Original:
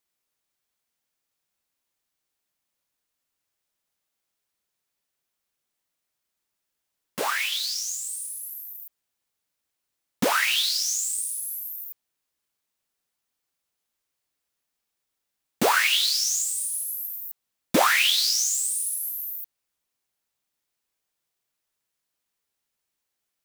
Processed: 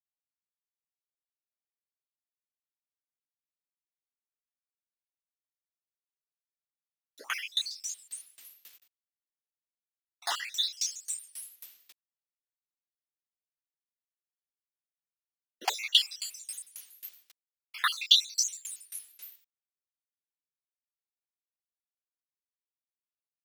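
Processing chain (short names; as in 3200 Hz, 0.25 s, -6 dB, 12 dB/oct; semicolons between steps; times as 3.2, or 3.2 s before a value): random spectral dropouts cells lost 63%; high-pass sweep 250 Hz -> 1700 Hz, 15.35–16.67; requantised 8-bit, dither none; weighting filter D; dB-ramp tremolo decaying 3.7 Hz, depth 25 dB; gain -6 dB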